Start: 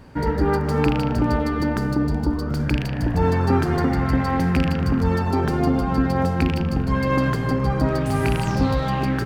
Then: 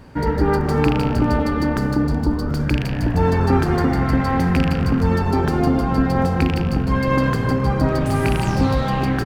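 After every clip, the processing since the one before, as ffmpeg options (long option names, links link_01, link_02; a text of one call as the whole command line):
ffmpeg -i in.wav -filter_complex "[0:a]asplit=5[link_01][link_02][link_03][link_04][link_05];[link_02]adelay=171,afreqshift=-35,volume=-12dB[link_06];[link_03]adelay=342,afreqshift=-70,volume=-19.3dB[link_07];[link_04]adelay=513,afreqshift=-105,volume=-26.7dB[link_08];[link_05]adelay=684,afreqshift=-140,volume=-34dB[link_09];[link_01][link_06][link_07][link_08][link_09]amix=inputs=5:normalize=0,volume=2dB" out.wav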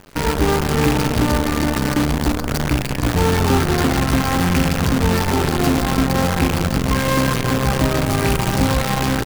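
ffmpeg -i in.wav -af "acrusher=bits=4:dc=4:mix=0:aa=0.000001" out.wav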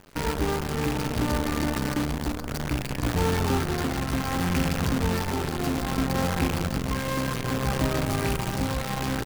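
ffmpeg -i in.wav -af "tremolo=f=0.63:d=0.3,volume=-7.5dB" out.wav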